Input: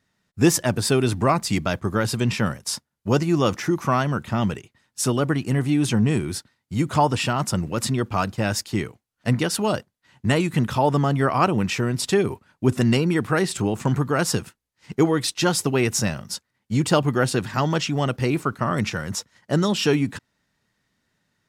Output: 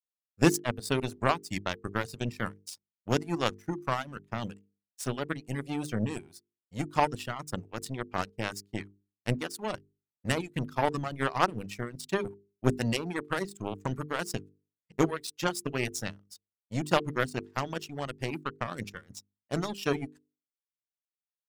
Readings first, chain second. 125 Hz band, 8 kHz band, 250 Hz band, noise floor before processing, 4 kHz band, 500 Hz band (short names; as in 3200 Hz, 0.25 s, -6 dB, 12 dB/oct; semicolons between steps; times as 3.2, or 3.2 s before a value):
-12.5 dB, -13.0 dB, -11.5 dB, -76 dBFS, -10.0 dB, -9.5 dB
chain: power-law curve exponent 2; reverb removal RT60 0.9 s; notches 50/100/150/200/250/300/350/400/450 Hz